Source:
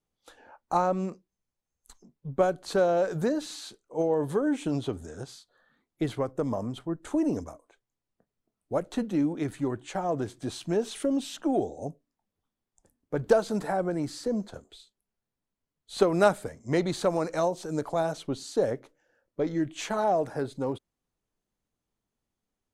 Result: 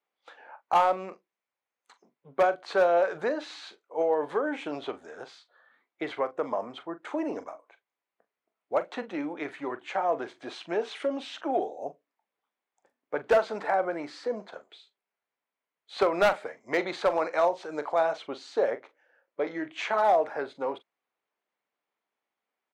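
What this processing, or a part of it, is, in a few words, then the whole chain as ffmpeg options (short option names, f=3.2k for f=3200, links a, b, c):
megaphone: -filter_complex "[0:a]highpass=620,lowpass=2.7k,equalizer=f=2.2k:t=o:w=0.32:g=4.5,asoftclip=type=hard:threshold=-21.5dB,asplit=2[a][b];[b]adelay=41,volume=-13.5dB[c];[a][c]amix=inputs=2:normalize=0,volume=5.5dB"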